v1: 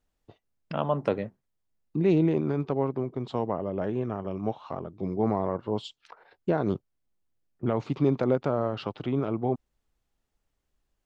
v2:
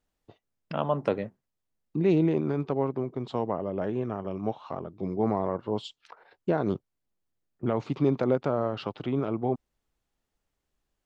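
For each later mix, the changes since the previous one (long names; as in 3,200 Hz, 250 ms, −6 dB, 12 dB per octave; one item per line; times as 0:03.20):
master: add low-shelf EQ 80 Hz −5.5 dB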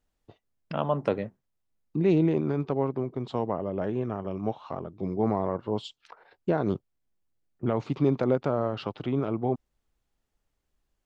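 master: add low-shelf EQ 80 Hz +5.5 dB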